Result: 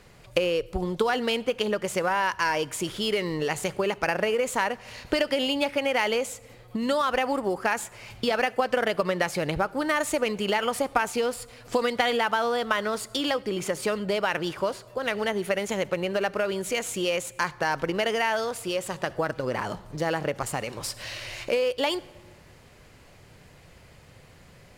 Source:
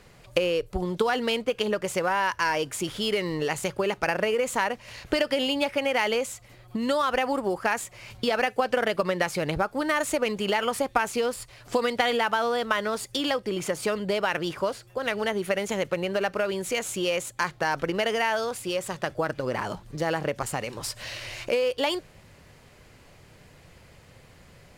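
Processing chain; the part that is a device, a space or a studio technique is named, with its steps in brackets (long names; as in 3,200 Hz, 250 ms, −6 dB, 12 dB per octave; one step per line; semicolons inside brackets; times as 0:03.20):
compressed reverb return (on a send at −11.5 dB: convolution reverb RT60 0.95 s, pre-delay 63 ms + downward compressor 5 to 1, threshold −35 dBFS, peak gain reduction 15 dB)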